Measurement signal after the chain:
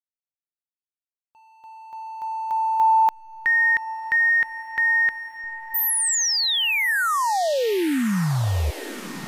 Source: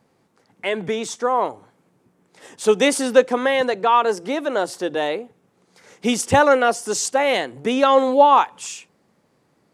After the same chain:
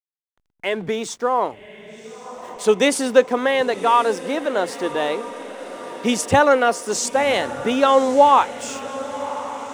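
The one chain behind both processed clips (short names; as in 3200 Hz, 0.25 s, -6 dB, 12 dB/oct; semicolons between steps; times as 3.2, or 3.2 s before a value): backlash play -41.5 dBFS; on a send: diffused feedback echo 1.114 s, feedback 61%, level -14 dB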